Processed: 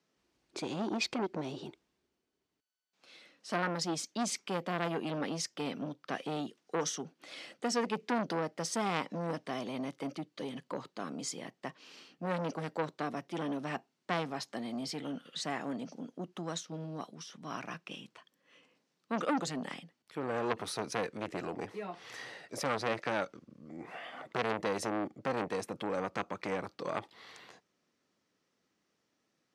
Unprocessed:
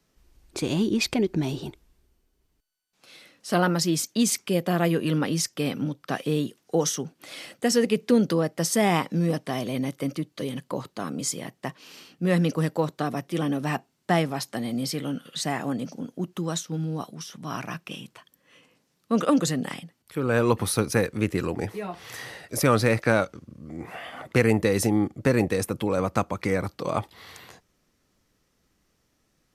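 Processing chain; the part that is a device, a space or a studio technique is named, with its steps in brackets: public-address speaker with an overloaded transformer (transformer saturation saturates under 1.8 kHz; band-pass 200–6300 Hz); trim -6.5 dB

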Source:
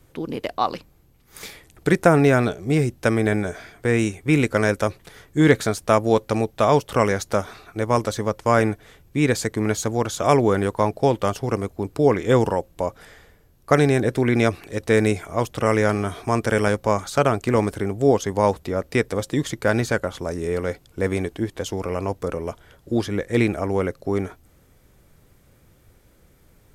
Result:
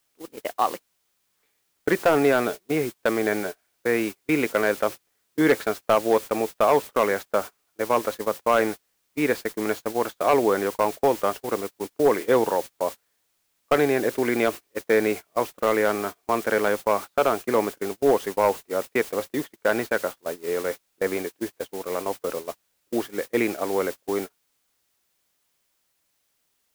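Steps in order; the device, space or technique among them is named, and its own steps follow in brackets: aircraft radio (band-pass 330–2600 Hz; hard clipper -11 dBFS, distortion -17 dB; white noise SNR 15 dB; gate -28 dBFS, range -32 dB)

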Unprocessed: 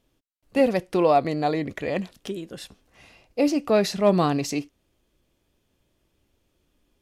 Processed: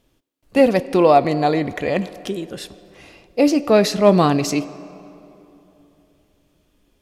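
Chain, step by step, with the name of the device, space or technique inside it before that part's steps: filtered reverb send (on a send: high-pass 200 Hz + low-pass 7.5 kHz + reverberation RT60 3.1 s, pre-delay 4 ms, DRR 15.5 dB); on the sum: trim +6 dB

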